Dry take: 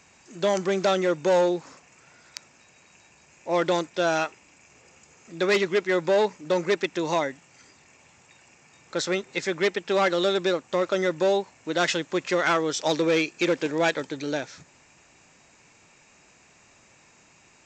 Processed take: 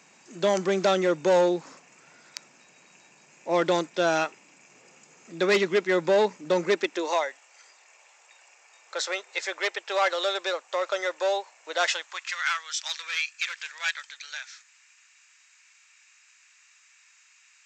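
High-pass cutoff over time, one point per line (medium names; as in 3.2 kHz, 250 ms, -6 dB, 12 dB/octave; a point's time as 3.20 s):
high-pass 24 dB/octave
6.60 s 150 Hz
7.25 s 550 Hz
11.84 s 550 Hz
12.36 s 1.4 kHz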